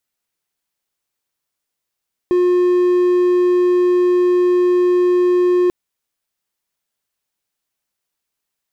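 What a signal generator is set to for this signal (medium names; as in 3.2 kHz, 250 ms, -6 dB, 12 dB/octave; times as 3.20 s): tone triangle 358 Hz -9 dBFS 3.39 s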